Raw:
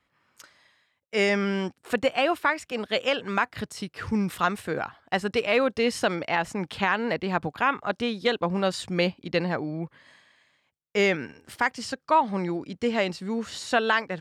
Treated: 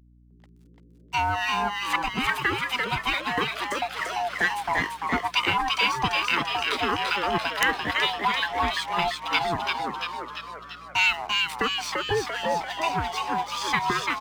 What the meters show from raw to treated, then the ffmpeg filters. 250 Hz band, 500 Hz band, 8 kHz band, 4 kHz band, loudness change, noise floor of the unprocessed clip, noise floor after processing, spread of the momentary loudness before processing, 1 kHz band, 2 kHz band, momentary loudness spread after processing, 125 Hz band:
-7.0 dB, -6.0 dB, +3.5 dB, +6.5 dB, +1.5 dB, -74 dBFS, -54 dBFS, 8 LU, +3.5 dB, +3.5 dB, 6 LU, -3.0 dB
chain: -filter_complex "[0:a]afftfilt=real='real(if(lt(b,1008),b+24*(1-2*mod(floor(b/24),2)),b),0)':imag='imag(if(lt(b,1008),b+24*(1-2*mod(floor(b/24),2)),b),0)':win_size=2048:overlap=0.75,highpass=f=71:p=1,acrossover=split=1200|4700[s0][s1][s2];[s0]acompressor=threshold=0.0158:ratio=4[s3];[s1]acompressor=threshold=0.0447:ratio=4[s4];[s2]acompressor=threshold=0.00251:ratio=4[s5];[s3][s4][s5]amix=inputs=3:normalize=0,acrossover=split=210[s6][s7];[s6]alimiter=level_in=5.01:limit=0.0631:level=0:latency=1:release=147,volume=0.2[s8];[s8][s7]amix=inputs=2:normalize=0,acontrast=82,acrossover=split=1200[s9][s10];[s9]aeval=exprs='val(0)*(1-1/2+1/2*cos(2*PI*2.3*n/s))':c=same[s11];[s10]aeval=exprs='val(0)*(1-1/2-1/2*cos(2*PI*2.3*n/s))':c=same[s12];[s11][s12]amix=inputs=2:normalize=0,aeval=exprs='sgn(val(0))*max(abs(val(0))-0.00355,0)':c=same,aeval=exprs='val(0)+0.00126*(sin(2*PI*60*n/s)+sin(2*PI*2*60*n/s)/2+sin(2*PI*3*60*n/s)/3+sin(2*PI*4*60*n/s)/4+sin(2*PI*5*60*n/s)/5)':c=same,asplit=9[s13][s14][s15][s16][s17][s18][s19][s20][s21];[s14]adelay=341,afreqshift=110,volume=0.668[s22];[s15]adelay=682,afreqshift=220,volume=0.389[s23];[s16]adelay=1023,afreqshift=330,volume=0.224[s24];[s17]adelay=1364,afreqshift=440,volume=0.13[s25];[s18]adelay=1705,afreqshift=550,volume=0.0759[s26];[s19]adelay=2046,afreqshift=660,volume=0.0437[s27];[s20]adelay=2387,afreqshift=770,volume=0.0254[s28];[s21]adelay=2728,afreqshift=880,volume=0.0148[s29];[s13][s22][s23][s24][s25][s26][s27][s28][s29]amix=inputs=9:normalize=0,aeval=exprs='(mod(4.47*val(0)+1,2)-1)/4.47':c=same,volume=1.58"

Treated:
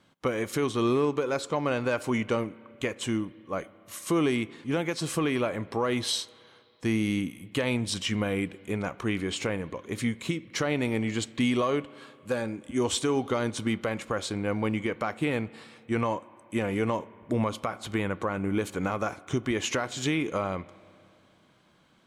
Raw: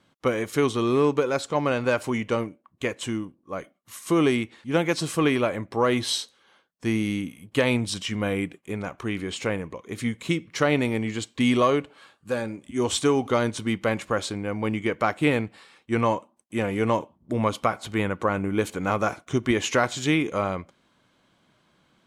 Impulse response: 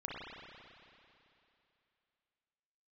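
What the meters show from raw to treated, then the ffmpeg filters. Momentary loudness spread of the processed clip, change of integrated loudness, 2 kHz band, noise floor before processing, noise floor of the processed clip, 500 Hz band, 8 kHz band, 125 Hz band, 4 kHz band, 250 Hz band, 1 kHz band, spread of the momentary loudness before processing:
8 LU, -4.0 dB, -4.5 dB, -66 dBFS, -61 dBFS, -4.5 dB, -2.0 dB, -3.0 dB, -2.5 dB, -3.0 dB, -5.5 dB, 9 LU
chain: -filter_complex "[0:a]alimiter=limit=0.126:level=0:latency=1:release=266,asplit=2[s0][s1];[1:a]atrim=start_sample=2205[s2];[s1][s2]afir=irnorm=-1:irlink=0,volume=0.0944[s3];[s0][s3]amix=inputs=2:normalize=0"

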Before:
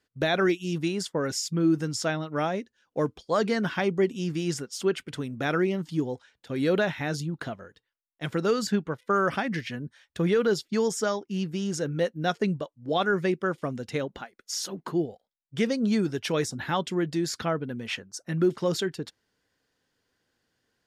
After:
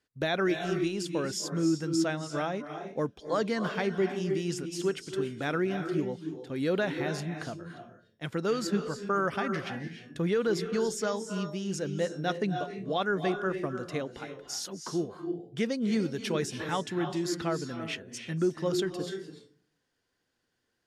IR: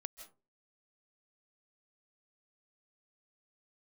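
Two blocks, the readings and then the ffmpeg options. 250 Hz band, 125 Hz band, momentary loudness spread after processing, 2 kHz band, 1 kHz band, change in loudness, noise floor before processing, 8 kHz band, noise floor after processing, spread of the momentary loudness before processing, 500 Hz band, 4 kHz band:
-3.0 dB, -3.5 dB, 9 LU, -3.5 dB, -3.5 dB, -3.5 dB, -81 dBFS, -3.5 dB, -79 dBFS, 10 LU, -3.0 dB, -3.5 dB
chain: -filter_complex "[1:a]atrim=start_sample=2205,asetrate=24255,aresample=44100[s0];[0:a][s0]afir=irnorm=-1:irlink=0,volume=0.708"

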